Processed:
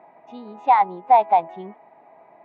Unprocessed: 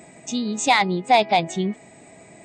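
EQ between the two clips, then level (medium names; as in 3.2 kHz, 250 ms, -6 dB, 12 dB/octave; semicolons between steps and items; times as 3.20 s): band-pass filter 910 Hz, Q 3.7; distance through air 310 m; +8.5 dB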